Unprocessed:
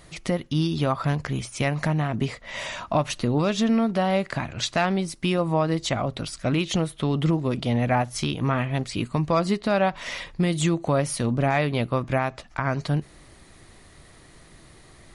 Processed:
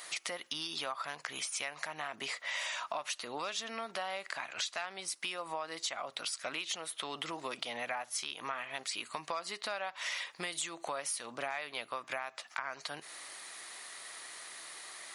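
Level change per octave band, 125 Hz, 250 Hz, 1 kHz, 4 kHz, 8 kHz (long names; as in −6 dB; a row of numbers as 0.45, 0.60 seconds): −36.0, −27.5, −12.0, −5.0, −3.0 decibels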